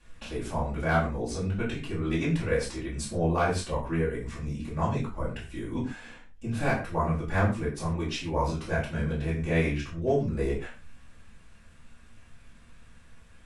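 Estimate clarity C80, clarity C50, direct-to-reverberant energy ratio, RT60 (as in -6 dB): 11.0 dB, 7.0 dB, -10.0 dB, not exponential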